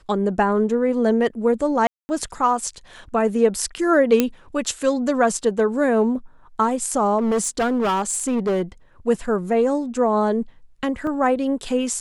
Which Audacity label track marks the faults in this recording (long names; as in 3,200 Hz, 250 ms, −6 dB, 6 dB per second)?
1.870000	2.090000	drop-out 220 ms
4.200000	4.200000	click −3 dBFS
7.180000	8.620000	clipping −17 dBFS
11.070000	11.070000	drop-out 2.4 ms